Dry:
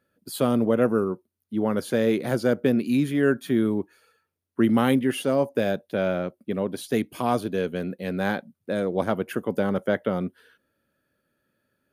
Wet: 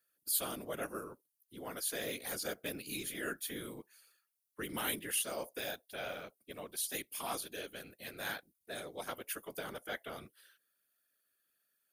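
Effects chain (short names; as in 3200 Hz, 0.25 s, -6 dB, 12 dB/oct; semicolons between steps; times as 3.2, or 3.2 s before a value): whisperiser; pre-emphasis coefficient 0.97; gain +2.5 dB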